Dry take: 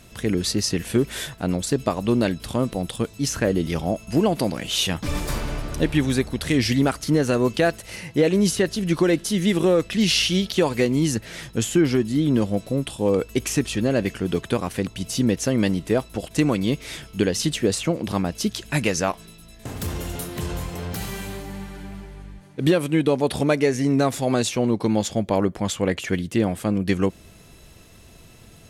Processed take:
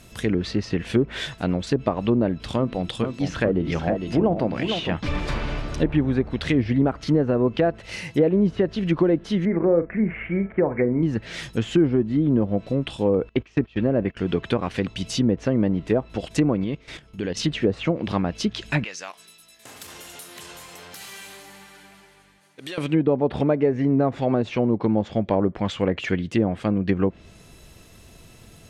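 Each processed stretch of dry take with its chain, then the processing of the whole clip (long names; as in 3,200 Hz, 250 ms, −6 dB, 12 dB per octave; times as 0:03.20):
0:02.57–0:04.94: mains-hum notches 50/100/150/200/250/300/350 Hz + single-tap delay 456 ms −7.5 dB
0:09.45–0:11.03: Chebyshev low-pass with heavy ripple 2,300 Hz, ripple 3 dB + double-tracking delay 41 ms −10.5 dB
0:13.29–0:14.17: low-pass filter 3,800 Hz + noise gate −29 dBFS, range −20 dB
0:16.64–0:17.37: low-pass filter 2,300 Hz 6 dB per octave + output level in coarse steps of 13 dB
0:18.84–0:22.78: high-pass filter 1,400 Hz 6 dB per octave + downward compressor 2 to 1, threshold −38 dBFS
whole clip: treble cut that deepens with the level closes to 860 Hz, closed at −16 dBFS; dynamic equaliser 2,900 Hz, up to +4 dB, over −42 dBFS, Q 0.71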